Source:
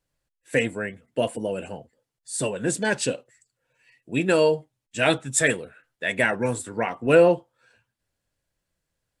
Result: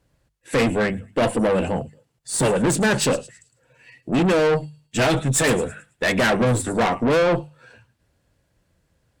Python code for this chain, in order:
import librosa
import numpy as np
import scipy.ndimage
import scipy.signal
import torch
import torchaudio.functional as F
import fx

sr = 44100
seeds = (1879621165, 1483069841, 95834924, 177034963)

p1 = scipy.signal.sosfilt(scipy.signal.butter(2, 50.0, 'highpass', fs=sr, output='sos'), x)
p2 = fx.tilt_eq(p1, sr, slope=-2.0)
p3 = fx.over_compress(p2, sr, threshold_db=-20.0, ratio=-0.5)
p4 = p2 + (p3 * 10.0 ** (1.0 / 20.0))
p5 = fx.echo_wet_highpass(p4, sr, ms=108, feedback_pct=31, hz=5300.0, wet_db=-12.0)
p6 = fx.tube_stage(p5, sr, drive_db=21.0, bias=0.3)
p7 = fx.hum_notches(p6, sr, base_hz=50, count=4)
y = p7 * 10.0 ** (5.5 / 20.0)